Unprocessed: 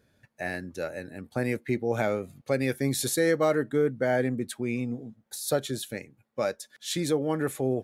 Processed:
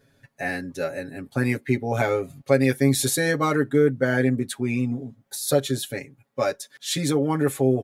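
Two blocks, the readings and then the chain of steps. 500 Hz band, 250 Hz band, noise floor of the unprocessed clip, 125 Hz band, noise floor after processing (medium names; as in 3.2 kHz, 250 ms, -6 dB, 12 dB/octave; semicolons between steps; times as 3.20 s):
+3.5 dB, +6.0 dB, -72 dBFS, +8.0 dB, -65 dBFS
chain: comb 7.3 ms, depth 97%; trim +2.5 dB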